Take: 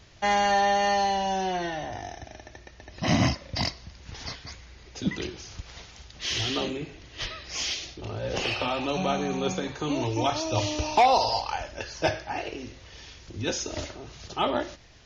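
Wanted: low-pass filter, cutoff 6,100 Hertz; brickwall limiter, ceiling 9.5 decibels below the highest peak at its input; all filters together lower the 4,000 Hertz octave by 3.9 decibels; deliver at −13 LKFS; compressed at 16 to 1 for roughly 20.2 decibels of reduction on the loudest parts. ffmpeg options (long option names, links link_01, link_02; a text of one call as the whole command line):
ffmpeg -i in.wav -af "lowpass=6100,equalizer=frequency=4000:width_type=o:gain=-4.5,acompressor=threshold=-36dB:ratio=16,volume=29.5dB,alimiter=limit=-2.5dB:level=0:latency=1" out.wav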